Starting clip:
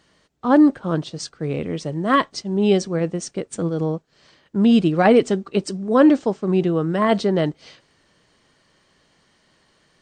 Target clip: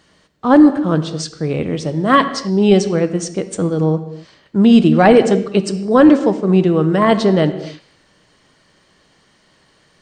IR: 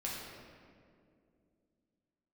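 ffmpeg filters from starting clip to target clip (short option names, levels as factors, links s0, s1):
-filter_complex "[0:a]asplit=2[s0][s1];[1:a]atrim=start_sample=2205,afade=t=out:st=0.33:d=0.01,atrim=end_sample=14994[s2];[s1][s2]afir=irnorm=-1:irlink=0,volume=0.355[s3];[s0][s3]amix=inputs=2:normalize=0,apsyclip=1.88,volume=0.794"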